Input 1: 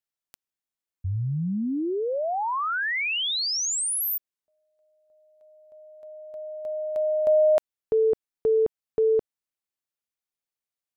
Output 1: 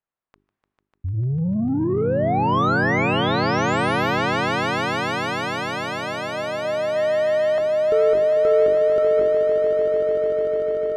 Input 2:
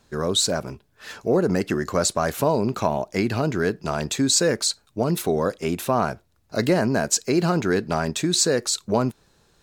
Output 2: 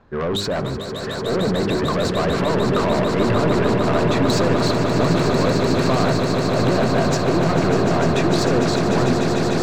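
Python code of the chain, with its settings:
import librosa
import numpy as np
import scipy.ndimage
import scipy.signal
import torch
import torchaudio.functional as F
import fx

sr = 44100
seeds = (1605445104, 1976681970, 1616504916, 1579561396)

p1 = scipy.signal.sosfilt(scipy.signal.butter(2, 1600.0, 'lowpass', fs=sr, output='sos'), x)
p2 = fx.peak_eq(p1, sr, hz=1100.0, db=3.0, octaves=0.3)
p3 = fx.hum_notches(p2, sr, base_hz=50, count=8)
p4 = fx.transient(p3, sr, attack_db=-2, sustain_db=8)
p5 = fx.over_compress(p4, sr, threshold_db=-24.0, ratio=-1.0)
p6 = p4 + F.gain(torch.from_numpy(p5), 1.5).numpy()
p7 = 10.0 ** (-18.0 / 20.0) * np.tanh(p6 / 10.0 ** (-18.0 / 20.0))
y = p7 + fx.echo_swell(p7, sr, ms=149, loudest=8, wet_db=-8.5, dry=0)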